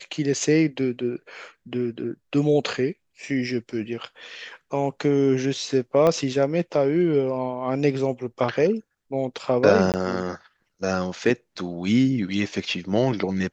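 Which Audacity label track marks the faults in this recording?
6.070000	6.070000	click −10 dBFS
9.920000	9.940000	drop-out 18 ms

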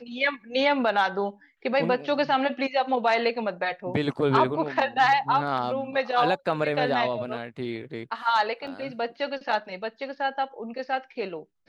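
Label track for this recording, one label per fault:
8.670000	8.670000	drop-out 4.4 ms

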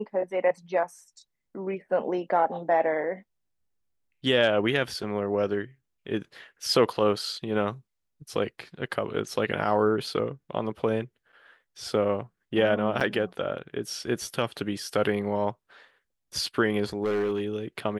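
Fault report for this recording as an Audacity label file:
13.000000	13.010000	drop-out 6.8 ms
17.040000	17.480000	clipping −22.5 dBFS

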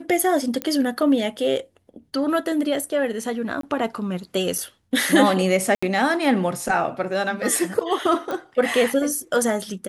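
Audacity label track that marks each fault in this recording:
0.620000	0.620000	click −10 dBFS
3.610000	3.630000	drop-out 23 ms
4.580000	4.580000	drop-out 3.5 ms
5.750000	5.830000	drop-out 75 ms
8.310000	8.310000	click −16 dBFS

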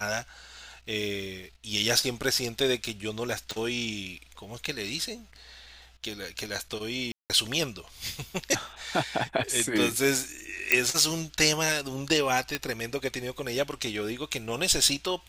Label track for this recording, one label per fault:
3.510000	3.510000	click
7.120000	7.300000	drop-out 178 ms
10.720000	10.720000	click −5 dBFS
12.550000	12.550000	click −11 dBFS

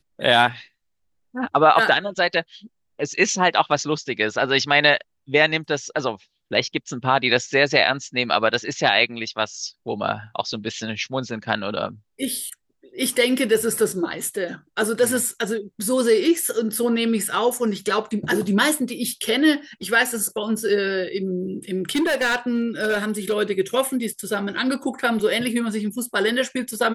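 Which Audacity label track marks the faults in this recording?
21.950000	23.340000	clipping −16.5 dBFS

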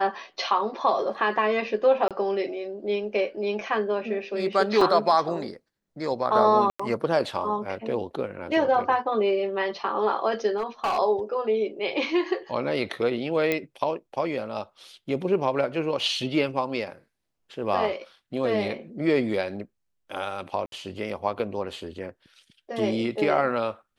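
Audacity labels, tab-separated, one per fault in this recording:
2.080000	2.110000	drop-out 27 ms
4.810000	4.810000	drop-out 3.9 ms
6.700000	6.790000	drop-out 95 ms
10.570000	10.990000	clipping −21.5 dBFS
13.520000	13.520000	click −11 dBFS
20.660000	20.720000	drop-out 62 ms

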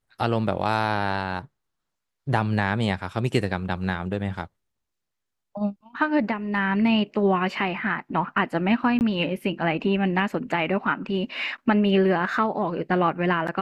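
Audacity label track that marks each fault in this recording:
8.990000	9.010000	drop-out 19 ms

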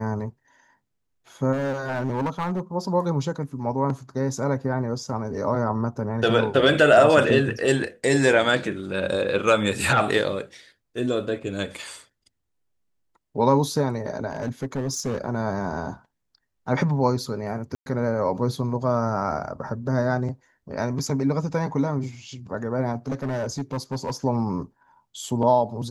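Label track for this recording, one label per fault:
1.520000	2.600000	clipping −21 dBFS
14.310000	15.210000	clipping −22 dBFS
17.750000	17.860000	drop-out 111 ms
23.080000	24.130000	clipping −22.5 dBFS

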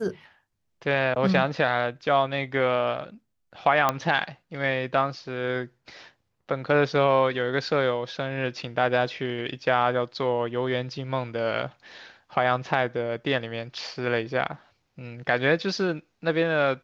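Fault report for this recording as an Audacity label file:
3.890000	3.890000	click −8 dBFS

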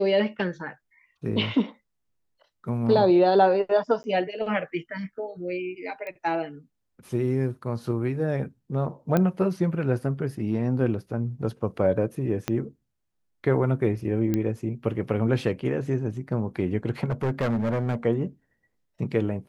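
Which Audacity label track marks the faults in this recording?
4.030000	4.040000	drop-out 10 ms
6.070000	6.070000	click −24 dBFS
9.170000	9.170000	click −11 dBFS
12.480000	12.480000	click −11 dBFS
14.340000	14.340000	click −13 dBFS
17.040000	17.950000	clipping −21.5 dBFS

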